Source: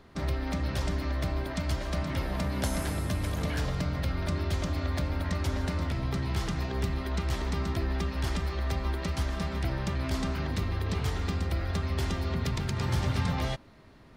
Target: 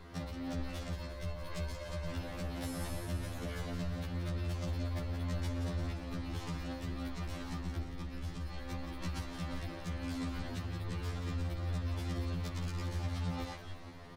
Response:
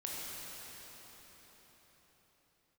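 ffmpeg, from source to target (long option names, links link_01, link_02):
-filter_complex "[0:a]asettb=1/sr,asplit=3[link_01][link_02][link_03];[link_01]atrim=end=0.924[link_04];[link_02]atrim=start=0.92:end=2.14,asetpts=PTS-STARTPTS,afade=type=in:duration=0.004:curve=qsin,afade=type=out:start_time=1.216:duration=0.004:curve=qsin,aecho=1:1:1.9:0.94,atrim=end_sample=53802[link_05];[link_03]atrim=start=2.136[link_06];[link_04][link_05]acrossfade=duration=0.004:curve1=hsin:curve2=qsin[link_07];[link_07][link_06]acrossfade=duration=0.004:curve1=qsin:curve2=hsin,asettb=1/sr,asplit=3[link_08][link_09][link_10];[link_08]atrim=end=7.584[link_11];[link_09]atrim=start=7.58:end=8.47,asetpts=PTS-STARTPTS,afade=type=in:duration=0.004:curve=qsin,afade=type=out:start_time=0.886:duration=0.004:curve=qsin,lowshelf=frequency=100:gain=9[link_12];[link_10]atrim=start=8.466[link_13];[link_11][link_12]acrossfade=duration=0.004:curve1=hsin:curve2=qsin[link_14];[link_14][link_13]acrossfade=duration=0.004:curve1=qsin:curve2=hsin,acompressor=threshold=-37dB:ratio=6,asoftclip=type=tanh:threshold=-37.5dB,asplit=8[link_15][link_16][link_17][link_18][link_19][link_20][link_21][link_22];[link_16]adelay=175,afreqshift=-36,volume=-8.5dB[link_23];[link_17]adelay=350,afreqshift=-72,volume=-13.4dB[link_24];[link_18]adelay=525,afreqshift=-108,volume=-18.3dB[link_25];[link_19]adelay=700,afreqshift=-144,volume=-23.1dB[link_26];[link_20]adelay=875,afreqshift=-180,volume=-28dB[link_27];[link_21]adelay=1050,afreqshift=-216,volume=-32.9dB[link_28];[link_22]adelay=1225,afreqshift=-252,volume=-37.8dB[link_29];[link_15][link_23][link_24][link_25][link_26][link_27][link_28][link_29]amix=inputs=8:normalize=0,afftfilt=real='re*2*eq(mod(b,4),0)':imag='im*2*eq(mod(b,4),0)':win_size=2048:overlap=0.75,volume=5.5dB"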